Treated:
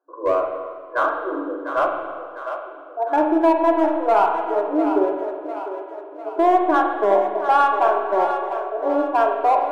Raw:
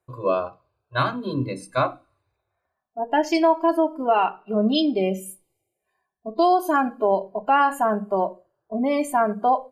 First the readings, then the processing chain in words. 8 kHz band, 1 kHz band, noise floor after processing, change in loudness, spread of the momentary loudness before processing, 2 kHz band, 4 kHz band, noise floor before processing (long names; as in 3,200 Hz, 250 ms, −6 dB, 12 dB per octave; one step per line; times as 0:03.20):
below −10 dB, +3.5 dB, −38 dBFS, +2.5 dB, 11 LU, +2.0 dB, can't be measured, −80 dBFS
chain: brick-wall band-pass 280–1,700 Hz
in parallel at −3.5 dB: gain into a clipping stage and back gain 18.5 dB
on the sum: echo with a time of its own for lows and highs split 370 Hz, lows 93 ms, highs 700 ms, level −9.5 dB
spring reverb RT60 1.7 s, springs 39/49 ms, chirp 40 ms, DRR 3.5 dB
level −2 dB